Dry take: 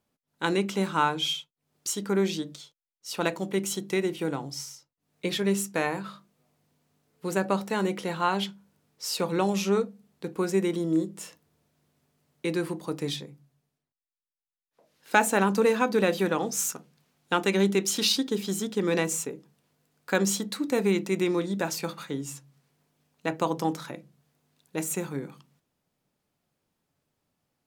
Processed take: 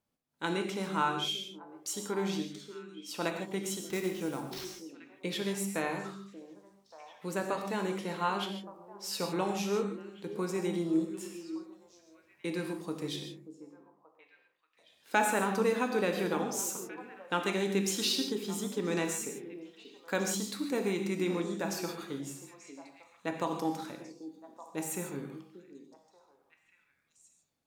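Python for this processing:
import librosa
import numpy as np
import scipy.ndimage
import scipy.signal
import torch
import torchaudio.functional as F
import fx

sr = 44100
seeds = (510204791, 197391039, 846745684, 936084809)

y = fx.sample_hold(x, sr, seeds[0], rate_hz=9600.0, jitter_pct=20, at=(3.8, 4.65))
y = fx.echo_stepped(y, sr, ms=583, hz=310.0, octaves=1.4, feedback_pct=70, wet_db=-10.5)
y = fx.rev_gated(y, sr, seeds[1], gate_ms=180, shape='flat', drr_db=4.0)
y = y * 10.0 ** (-7.0 / 20.0)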